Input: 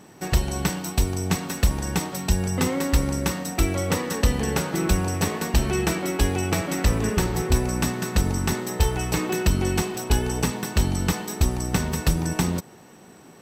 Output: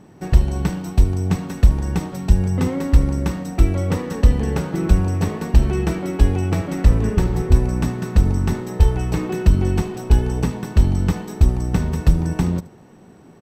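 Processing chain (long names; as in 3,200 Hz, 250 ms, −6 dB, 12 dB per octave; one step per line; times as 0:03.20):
spectral tilt −2.5 dB per octave
on a send: single-tap delay 75 ms −19 dB
on the sum: level −2 dB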